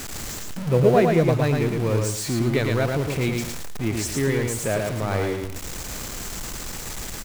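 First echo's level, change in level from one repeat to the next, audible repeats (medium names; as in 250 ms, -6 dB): -3.5 dB, -11.5 dB, 2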